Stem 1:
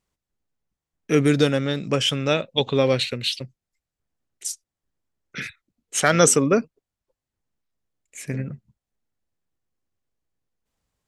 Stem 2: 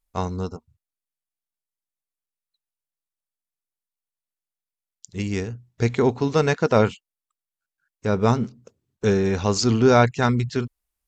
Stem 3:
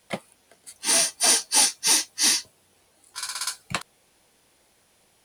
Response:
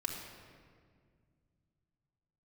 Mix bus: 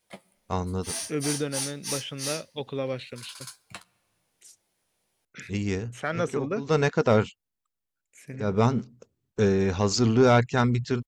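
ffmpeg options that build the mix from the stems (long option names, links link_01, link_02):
-filter_complex "[0:a]acrossover=split=2900[link_01][link_02];[link_02]acompressor=threshold=-39dB:ratio=4:attack=1:release=60[link_03];[link_01][link_03]amix=inputs=2:normalize=0,volume=-11dB,asplit=2[link_04][link_05];[1:a]highshelf=frequency=5200:gain=-3,asoftclip=type=tanh:threshold=-6.5dB,adelay=350,volume=-2dB[link_06];[2:a]flanger=delay=7.8:depth=7.6:regen=39:speed=1.1:shape=triangular,volume=-10.5dB,asplit=2[link_07][link_08];[link_08]volume=-21.5dB[link_09];[link_05]apad=whole_len=503631[link_10];[link_06][link_10]sidechaincompress=threshold=-41dB:ratio=8:attack=44:release=159[link_11];[3:a]atrim=start_sample=2205[link_12];[link_09][link_12]afir=irnorm=-1:irlink=0[link_13];[link_04][link_11][link_07][link_13]amix=inputs=4:normalize=0,highshelf=frequency=11000:gain=4.5,asoftclip=type=hard:threshold=-11dB"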